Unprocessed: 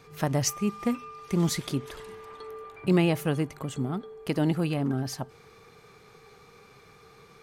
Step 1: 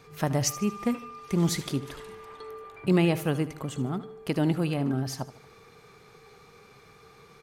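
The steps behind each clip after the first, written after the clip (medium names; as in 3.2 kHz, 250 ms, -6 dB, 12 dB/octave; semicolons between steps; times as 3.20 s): feedback delay 76 ms, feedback 42%, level -15.5 dB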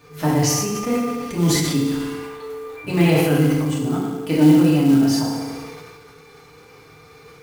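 reverberation RT60 1.2 s, pre-delay 3 ms, DRR -7 dB; companded quantiser 6-bit; decay stretcher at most 31 dB/s; trim -1 dB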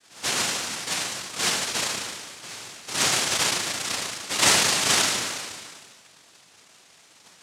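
noise-vocoded speech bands 1; trim -7.5 dB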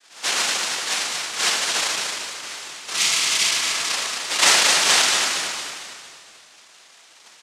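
frequency weighting A; spectral replace 2.94–3.84 s, 220–1900 Hz after; frequency-shifting echo 228 ms, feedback 46%, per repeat -31 Hz, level -6 dB; trim +3 dB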